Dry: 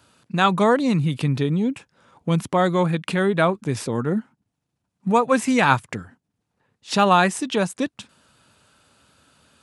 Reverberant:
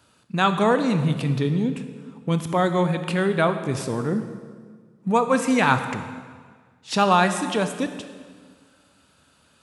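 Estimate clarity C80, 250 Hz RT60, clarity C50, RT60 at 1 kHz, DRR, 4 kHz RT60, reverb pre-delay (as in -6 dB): 10.5 dB, 1.9 s, 9.5 dB, 1.6 s, 8.0 dB, 1.4 s, 23 ms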